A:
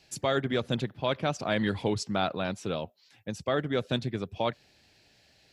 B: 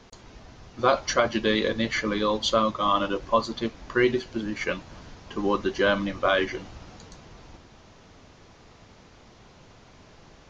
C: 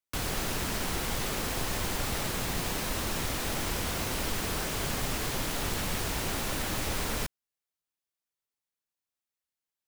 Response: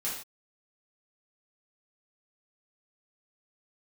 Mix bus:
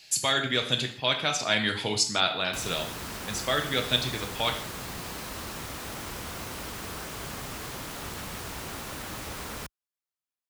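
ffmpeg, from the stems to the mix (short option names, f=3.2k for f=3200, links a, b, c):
-filter_complex "[0:a]tiltshelf=f=1.4k:g=-9.5,bandreject=f=5.6k:w=22,volume=1dB,asplit=2[a][b];[b]volume=-5dB[c];[2:a]highpass=46,equalizer=f=1.2k:t=o:w=0.77:g=3.5,adelay=2400,volume=-5.5dB[d];[3:a]atrim=start_sample=2205[e];[c][e]afir=irnorm=-1:irlink=0[f];[a][d][f]amix=inputs=3:normalize=0"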